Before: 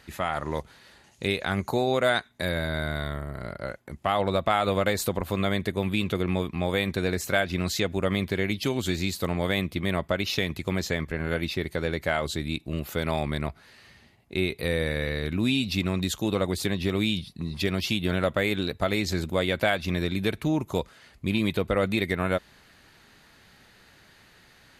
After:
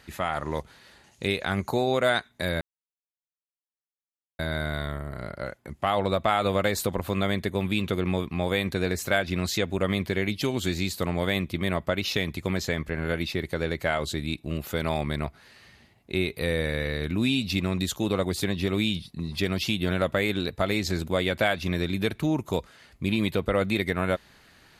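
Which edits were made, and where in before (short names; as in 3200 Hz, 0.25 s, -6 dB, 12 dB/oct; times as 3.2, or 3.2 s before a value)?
2.61 insert silence 1.78 s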